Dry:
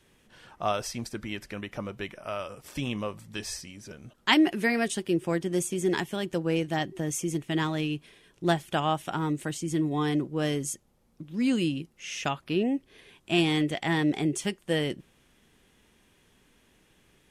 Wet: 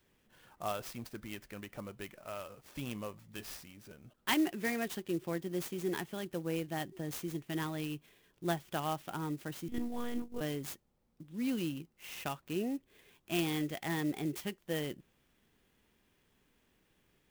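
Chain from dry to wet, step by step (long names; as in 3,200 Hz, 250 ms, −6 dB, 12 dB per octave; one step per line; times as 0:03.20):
0:09.68–0:10.41: one-pitch LPC vocoder at 8 kHz 240 Hz
converter with an unsteady clock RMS 0.034 ms
level −9 dB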